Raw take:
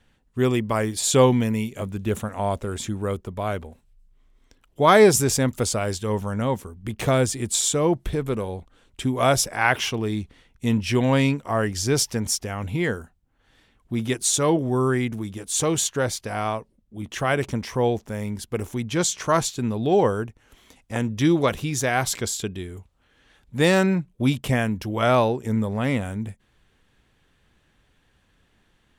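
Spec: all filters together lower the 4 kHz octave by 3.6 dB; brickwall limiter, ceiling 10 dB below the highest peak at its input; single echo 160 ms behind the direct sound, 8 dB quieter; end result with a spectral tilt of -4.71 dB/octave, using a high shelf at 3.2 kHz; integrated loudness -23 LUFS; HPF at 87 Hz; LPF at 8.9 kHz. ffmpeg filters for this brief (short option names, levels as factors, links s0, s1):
-af "highpass=87,lowpass=8900,highshelf=f=3200:g=4,equalizer=f=4000:t=o:g=-8,alimiter=limit=0.2:level=0:latency=1,aecho=1:1:160:0.398,volume=1.26"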